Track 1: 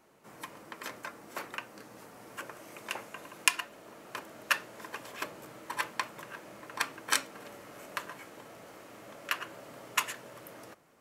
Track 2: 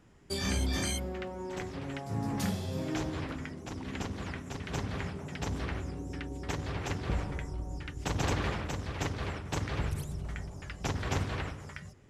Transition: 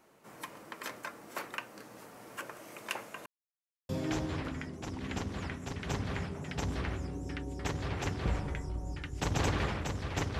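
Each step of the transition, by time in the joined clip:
track 1
3.26–3.89 s: mute
3.89 s: go over to track 2 from 2.73 s

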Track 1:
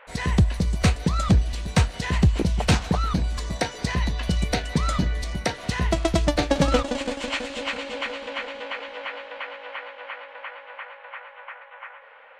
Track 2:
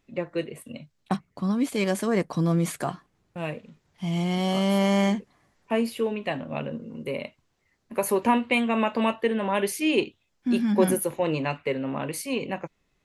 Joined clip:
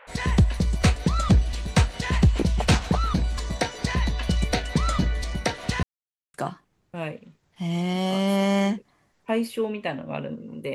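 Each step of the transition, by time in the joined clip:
track 1
5.83–6.34 s: mute
6.34 s: go over to track 2 from 2.76 s

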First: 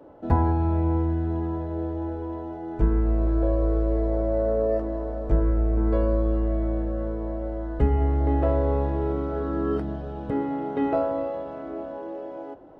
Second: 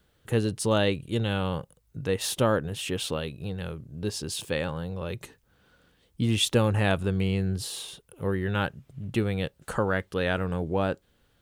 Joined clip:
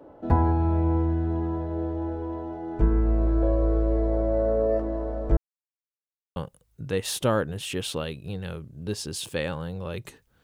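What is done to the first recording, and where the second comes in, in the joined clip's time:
first
5.37–6.36 s: mute
6.36 s: go over to second from 1.52 s

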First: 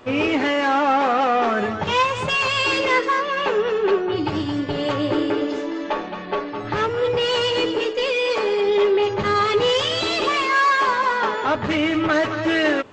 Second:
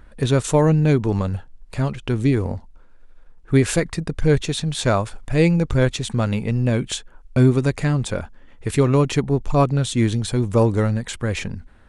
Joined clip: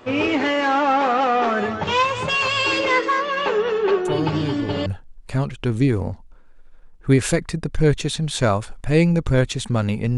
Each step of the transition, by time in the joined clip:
first
4.05 s: add second from 0.49 s 0.81 s -10 dB
4.86 s: go over to second from 1.30 s

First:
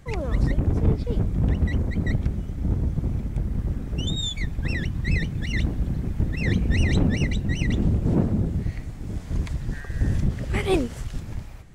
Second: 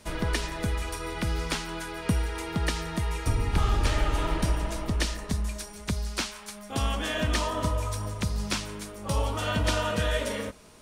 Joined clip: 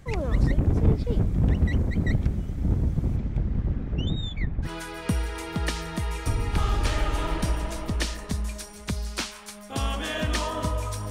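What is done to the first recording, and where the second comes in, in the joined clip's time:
first
3.16–4.70 s: low-pass 5.5 kHz -> 1.6 kHz
4.66 s: go over to second from 1.66 s, crossfade 0.08 s

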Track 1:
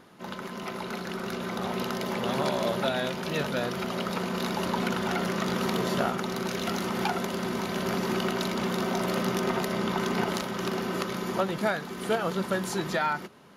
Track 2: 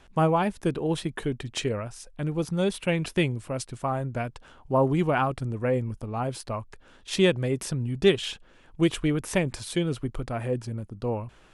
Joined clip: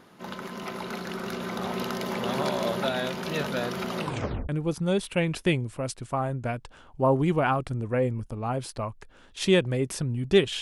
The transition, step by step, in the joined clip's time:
track 1
3.97 s: tape stop 0.52 s
4.49 s: go over to track 2 from 2.20 s

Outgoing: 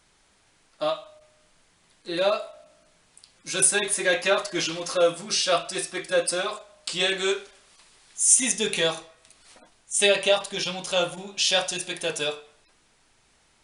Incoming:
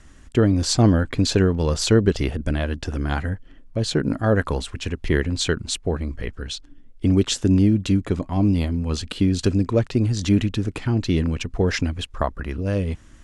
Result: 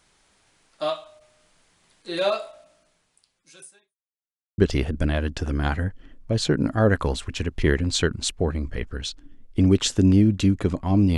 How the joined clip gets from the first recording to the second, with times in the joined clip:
outgoing
2.55–3.96 s: fade out quadratic
3.96–4.58 s: mute
4.58 s: go over to incoming from 2.04 s

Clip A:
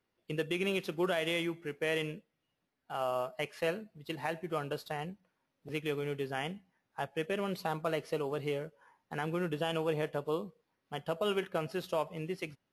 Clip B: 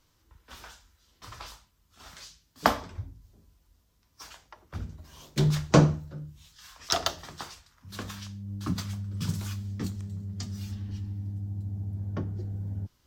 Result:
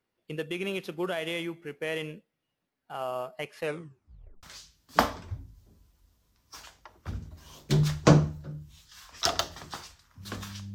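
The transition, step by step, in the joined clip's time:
clip A
3.62 s: tape stop 0.81 s
4.43 s: go over to clip B from 2.10 s

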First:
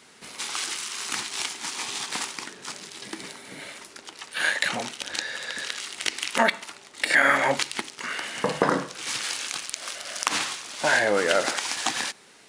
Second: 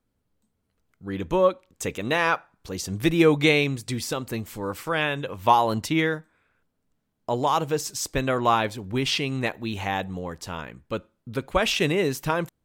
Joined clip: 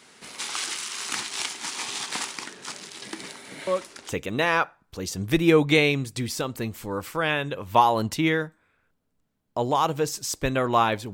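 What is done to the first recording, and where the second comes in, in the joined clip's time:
first
3.67 s: add second from 1.39 s 0.45 s -6 dB
4.12 s: go over to second from 1.84 s

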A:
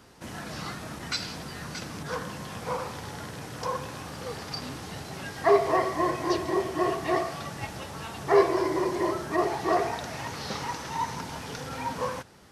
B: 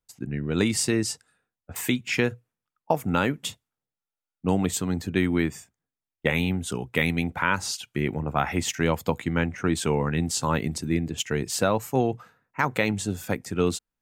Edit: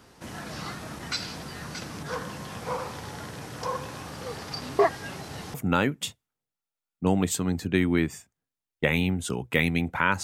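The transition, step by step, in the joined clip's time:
A
4.79–5.54 s: reverse
5.54 s: go over to B from 2.96 s

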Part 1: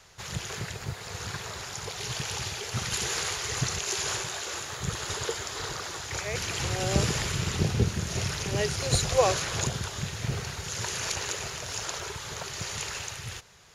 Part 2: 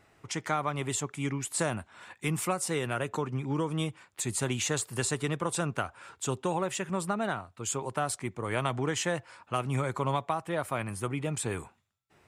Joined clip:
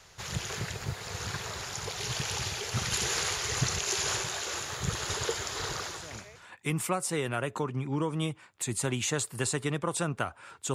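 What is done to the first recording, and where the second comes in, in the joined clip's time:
part 1
6.19 s: go over to part 2 from 1.77 s, crossfade 0.74 s quadratic

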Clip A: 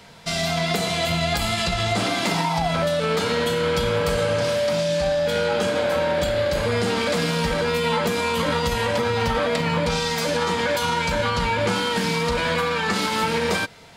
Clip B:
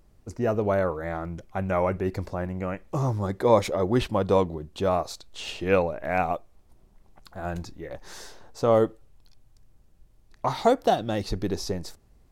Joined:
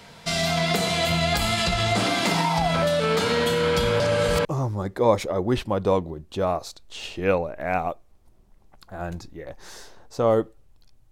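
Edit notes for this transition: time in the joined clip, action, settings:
clip A
4.00–4.45 s: reverse
4.45 s: go over to clip B from 2.89 s

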